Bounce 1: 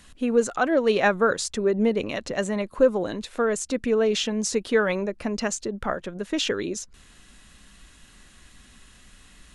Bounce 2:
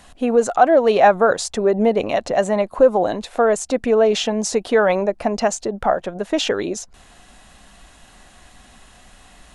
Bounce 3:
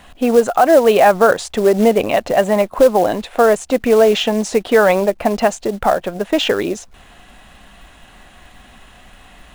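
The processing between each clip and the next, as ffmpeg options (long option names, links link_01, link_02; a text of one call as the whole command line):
ffmpeg -i in.wav -filter_complex "[0:a]equalizer=frequency=730:width=1.8:gain=14.5,asplit=2[link_01][link_02];[link_02]alimiter=limit=-12dB:level=0:latency=1:release=68,volume=1dB[link_03];[link_01][link_03]amix=inputs=2:normalize=0,volume=-3.5dB" out.wav
ffmpeg -i in.wav -af "highshelf=frequency=3900:width_type=q:width=1.5:gain=-6,acrusher=bits=5:mode=log:mix=0:aa=0.000001,alimiter=level_in=5dB:limit=-1dB:release=50:level=0:latency=1,volume=-1dB" out.wav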